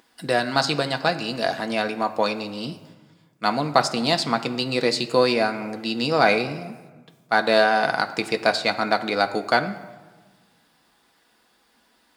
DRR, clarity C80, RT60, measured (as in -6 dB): 5.5 dB, 15.0 dB, 1.4 s